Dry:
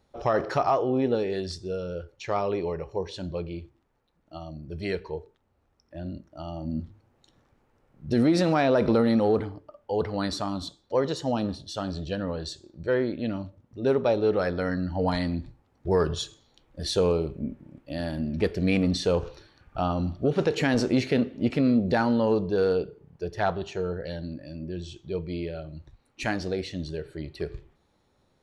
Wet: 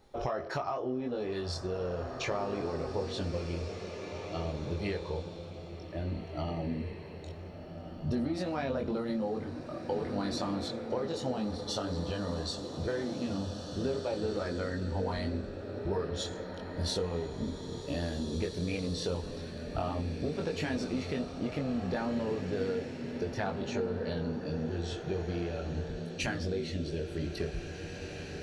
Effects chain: chorus voices 4, 0.13 Hz, delay 22 ms, depth 2.4 ms; compressor 6:1, threshold -41 dBFS, peak gain reduction 20.5 dB; bloom reverb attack 2.03 s, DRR 5 dB; gain +8.5 dB

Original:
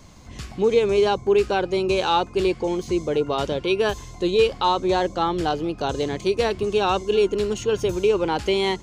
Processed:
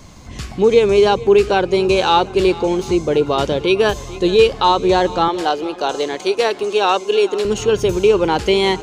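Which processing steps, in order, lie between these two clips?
5.28–7.45 HPF 390 Hz 12 dB/oct; swung echo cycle 0.738 s, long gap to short 1.5:1, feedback 32%, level -19 dB; gain +6.5 dB

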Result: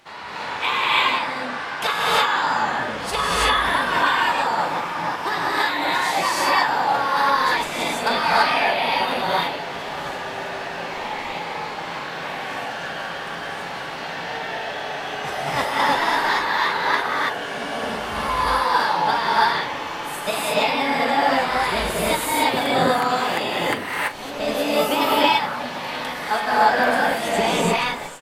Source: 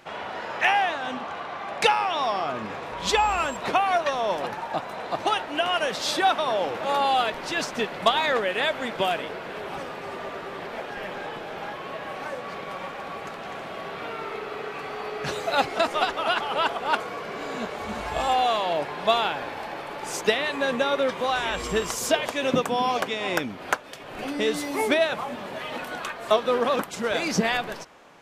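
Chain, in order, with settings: doubler 41 ms -13 dB; formant shift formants +5 st; dynamic EQ 5800 Hz, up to -7 dB, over -43 dBFS, Q 1.2; non-linear reverb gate 0.36 s rising, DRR -7 dB; gain -2.5 dB

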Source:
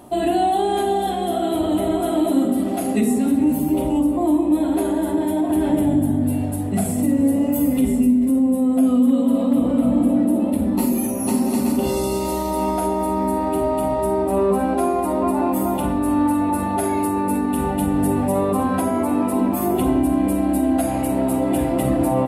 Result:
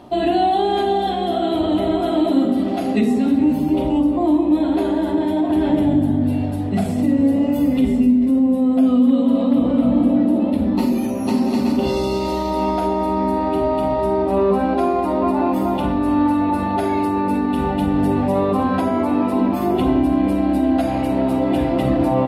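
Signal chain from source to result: resonant high shelf 6500 Hz -13.5 dB, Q 1.5; gain +1.5 dB

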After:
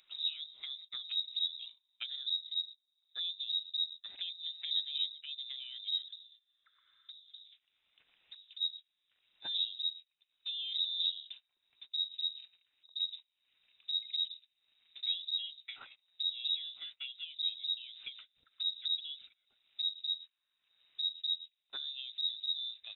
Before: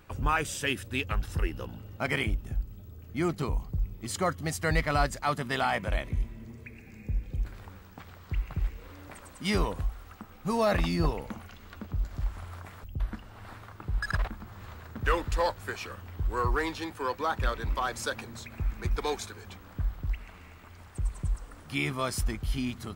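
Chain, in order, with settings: gate -38 dBFS, range -30 dB; treble ducked by the level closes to 380 Hz, closed at -27 dBFS; 6.08–8.6 HPF 180 Hz 12 dB/oct; upward compressor, threshold -43 dBFS; inverted band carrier 3800 Hz; gain -8.5 dB

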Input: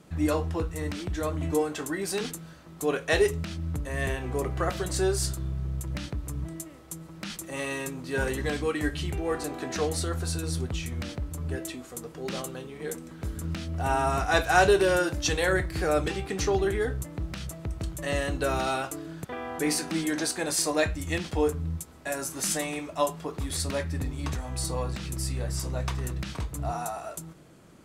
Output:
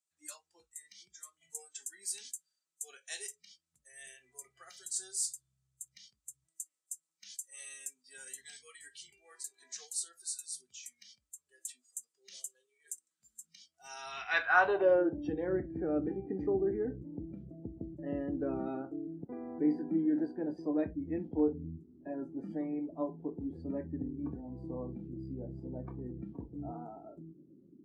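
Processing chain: band-pass sweep 7900 Hz -> 280 Hz, 13.8–15.18; spectral noise reduction 21 dB; 21.39–22.15 dynamic EQ 850 Hz, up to +3 dB, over -50 dBFS, Q 1.3; gain +1 dB

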